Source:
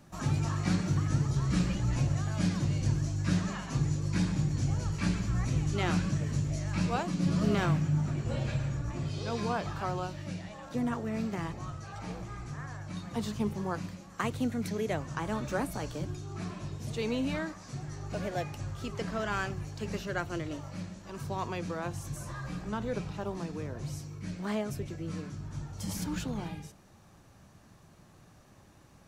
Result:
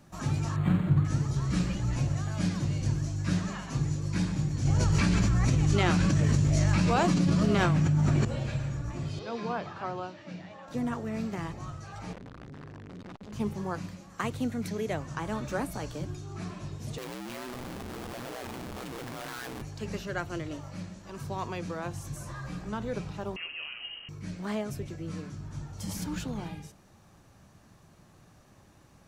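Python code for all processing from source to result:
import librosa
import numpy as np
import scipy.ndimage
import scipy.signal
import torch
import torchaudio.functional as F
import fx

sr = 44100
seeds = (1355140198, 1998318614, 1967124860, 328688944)

y = fx.chain(x, sr, fx.peak_eq(hz=140.0, db=7.5, octaves=0.67),
    fx.resample_linear(factor=8), at=(0.56, 1.05))
y = fx.chain(y, sr, fx.lowpass(hz=11000.0, slope=12),
    fx.env_flatten(amount_pct=100), at=(4.65, 8.25))
y = fx.chain(y, sr, fx.highpass(hz=150.0, slope=12),
    fx.air_absorb(metres=140.0),
    fx.hum_notches(base_hz=50, count=8), at=(9.19, 10.68))
y = fx.chain(y, sr, fx.clip_1bit(),
    fx.spacing_loss(db_at_10k=23),
    fx.transformer_sat(knee_hz=210.0), at=(12.13, 13.33))
y = fx.chain(y, sr, fx.cheby1_bandpass(low_hz=210.0, high_hz=4600.0, order=3),
    fx.schmitt(flips_db=-49.0),
    fx.ring_mod(carrier_hz=62.0), at=(16.98, 19.62))
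y = fx.chain(y, sr, fx.delta_mod(bps=64000, step_db=-44.0),
    fx.low_shelf(hz=130.0, db=-9.5),
    fx.freq_invert(carrier_hz=3000), at=(23.36, 24.09))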